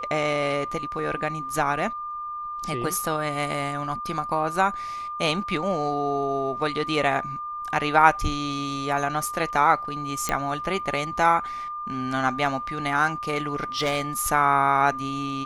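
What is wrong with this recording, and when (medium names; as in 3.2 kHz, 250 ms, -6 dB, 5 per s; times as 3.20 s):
whine 1.2 kHz -30 dBFS
10.29 s: pop -8 dBFS
13.35–14.02 s: clipped -19.5 dBFS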